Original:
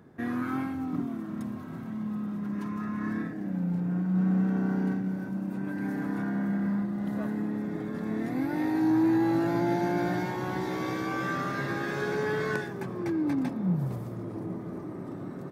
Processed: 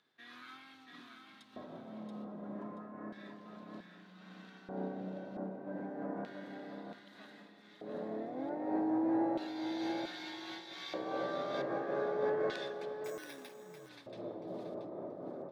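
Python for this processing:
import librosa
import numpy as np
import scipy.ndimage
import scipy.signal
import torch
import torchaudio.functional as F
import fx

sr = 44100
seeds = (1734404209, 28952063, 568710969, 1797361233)

y = fx.filter_lfo_bandpass(x, sr, shape='square', hz=0.32, low_hz=590.0, high_hz=3700.0, q=3.5)
y = fx.echo_feedback(y, sr, ms=680, feedback_pct=25, wet_db=-6.0)
y = fx.resample_bad(y, sr, factor=6, down='filtered', up='hold', at=(13.04, 13.89))
y = fx.am_noise(y, sr, seeds[0], hz=5.7, depth_pct=65)
y = y * librosa.db_to_amplitude(7.5)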